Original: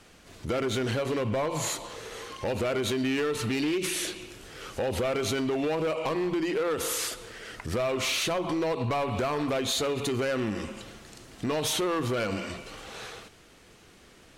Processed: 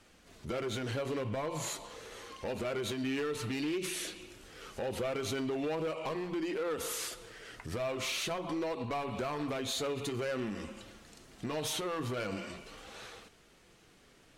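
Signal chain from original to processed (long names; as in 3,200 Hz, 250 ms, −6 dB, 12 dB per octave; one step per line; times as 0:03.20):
flanger 0.46 Hz, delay 3.2 ms, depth 4.3 ms, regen −57%
level −3 dB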